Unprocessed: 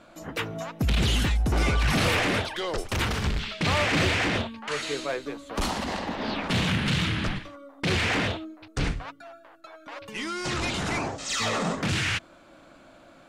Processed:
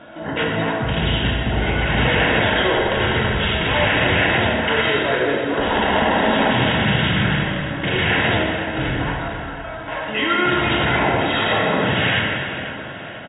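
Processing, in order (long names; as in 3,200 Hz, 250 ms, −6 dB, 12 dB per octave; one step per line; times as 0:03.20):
in parallel at 0 dB: compressor whose output falls as the input rises −31 dBFS, ratio −0.5
on the sum: linear-phase brick-wall low-pass 3,800 Hz
parametric band 270 Hz −3.5 dB 2.3 octaves
notch comb filter 1,200 Hz
on a send: repeating echo 493 ms, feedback 51%, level −14 dB
on the sum: dense smooth reverb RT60 2.8 s, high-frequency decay 0.55×, DRR −4 dB
level +3 dB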